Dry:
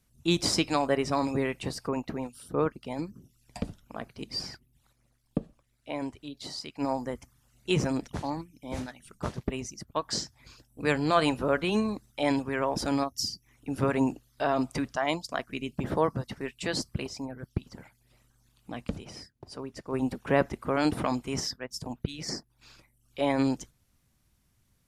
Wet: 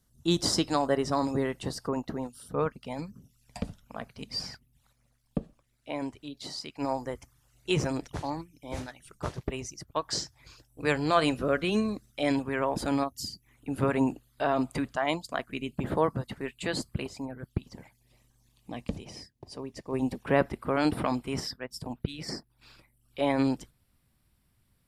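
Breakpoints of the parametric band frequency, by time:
parametric band −13.5 dB 0.27 octaves
2,400 Hz
from 0:02.46 340 Hz
from 0:05.38 70 Hz
from 0:06.77 220 Hz
from 0:11.24 900 Hz
from 0:12.35 5,600 Hz
from 0:17.64 1,400 Hz
from 0:20.23 6,400 Hz

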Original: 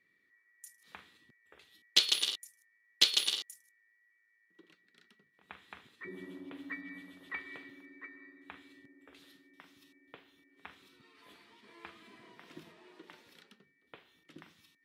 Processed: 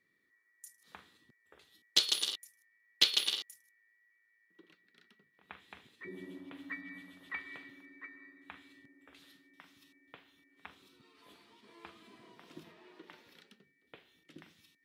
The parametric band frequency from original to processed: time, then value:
parametric band −5.5 dB 0.89 octaves
2,400 Hz
from 0:02.33 7,800 Hz
from 0:05.60 1,300 Hz
from 0:06.38 400 Hz
from 0:10.66 1,900 Hz
from 0:12.64 8,600 Hz
from 0:13.41 1,100 Hz

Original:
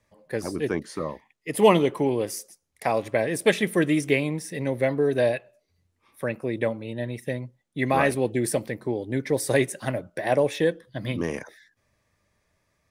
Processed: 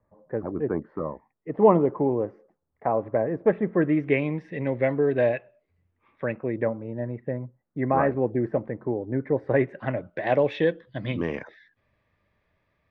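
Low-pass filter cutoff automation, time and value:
low-pass filter 24 dB per octave
0:03.64 1,300 Hz
0:04.24 2,600 Hz
0:06.25 2,600 Hz
0:06.79 1,500 Hz
0:09.35 1,500 Hz
0:10.30 3,500 Hz

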